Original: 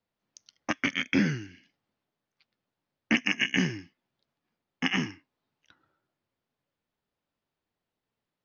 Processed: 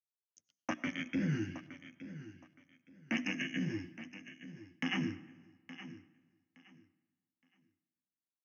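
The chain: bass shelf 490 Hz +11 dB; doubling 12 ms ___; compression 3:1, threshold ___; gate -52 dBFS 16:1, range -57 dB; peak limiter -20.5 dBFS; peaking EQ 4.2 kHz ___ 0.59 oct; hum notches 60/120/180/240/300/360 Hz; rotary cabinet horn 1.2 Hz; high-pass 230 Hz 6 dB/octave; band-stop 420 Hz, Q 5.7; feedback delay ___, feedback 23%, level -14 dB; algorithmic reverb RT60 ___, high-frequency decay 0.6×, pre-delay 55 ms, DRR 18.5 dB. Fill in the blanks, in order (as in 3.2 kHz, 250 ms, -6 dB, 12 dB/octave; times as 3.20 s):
-5.5 dB, -18 dBFS, -9 dB, 868 ms, 1.5 s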